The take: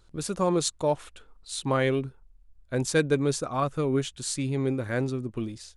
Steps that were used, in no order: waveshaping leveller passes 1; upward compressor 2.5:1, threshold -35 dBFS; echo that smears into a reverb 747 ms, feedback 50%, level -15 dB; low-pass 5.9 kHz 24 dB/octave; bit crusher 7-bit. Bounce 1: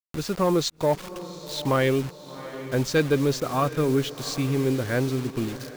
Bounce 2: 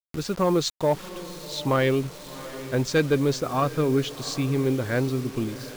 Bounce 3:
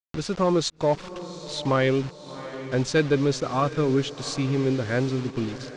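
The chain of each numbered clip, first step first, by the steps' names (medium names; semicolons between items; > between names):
low-pass > bit crusher > echo that smears into a reverb > waveshaping leveller > upward compressor; low-pass > waveshaping leveller > echo that smears into a reverb > bit crusher > upward compressor; bit crusher > echo that smears into a reverb > upward compressor > waveshaping leveller > low-pass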